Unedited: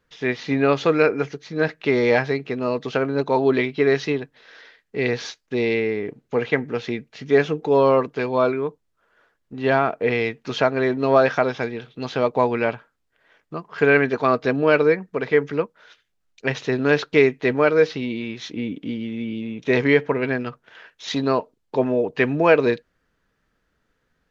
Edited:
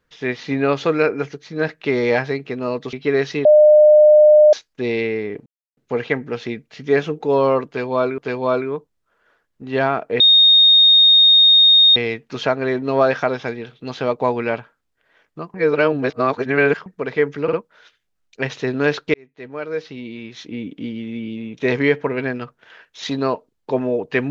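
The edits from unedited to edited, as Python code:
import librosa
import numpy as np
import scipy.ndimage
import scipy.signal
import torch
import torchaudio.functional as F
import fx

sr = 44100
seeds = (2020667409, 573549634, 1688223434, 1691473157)

y = fx.edit(x, sr, fx.cut(start_s=2.93, length_s=0.73),
    fx.bleep(start_s=4.18, length_s=1.08, hz=605.0, db=-6.0),
    fx.insert_silence(at_s=6.19, length_s=0.31),
    fx.repeat(start_s=8.09, length_s=0.51, count=2),
    fx.insert_tone(at_s=10.11, length_s=1.76, hz=3700.0, db=-7.5),
    fx.reverse_span(start_s=13.69, length_s=1.32),
    fx.stutter(start_s=15.58, slice_s=0.05, count=3),
    fx.fade_in_span(start_s=17.19, length_s=1.72), tone=tone)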